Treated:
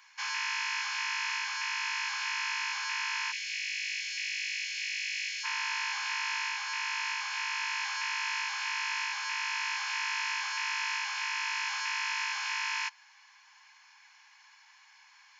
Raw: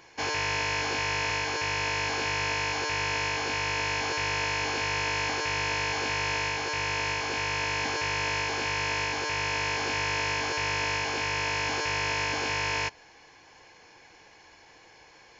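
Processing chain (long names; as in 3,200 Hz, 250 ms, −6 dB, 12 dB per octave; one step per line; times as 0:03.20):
Butterworth high-pass 960 Hz 48 dB per octave, from 0:03.31 1,900 Hz, from 0:05.43 920 Hz
level −3 dB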